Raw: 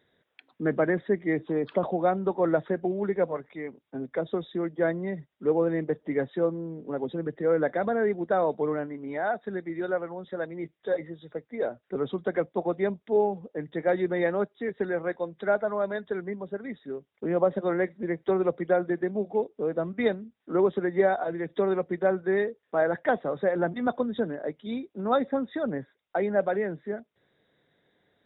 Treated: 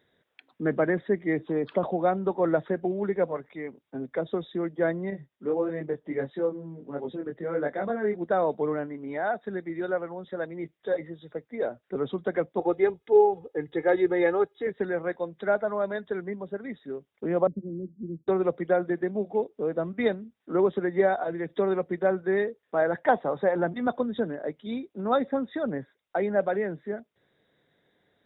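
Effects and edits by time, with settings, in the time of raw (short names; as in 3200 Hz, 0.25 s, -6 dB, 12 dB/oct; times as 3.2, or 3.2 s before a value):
5.1–8.22 chorus 1.5 Hz, delay 20 ms, depth 3.8 ms
12.59–14.67 comb 2.4 ms, depth 80%
17.47–18.28 inverse Chebyshev low-pass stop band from 980 Hz, stop band 60 dB
23.03–23.6 bell 880 Hz +8 dB 0.57 oct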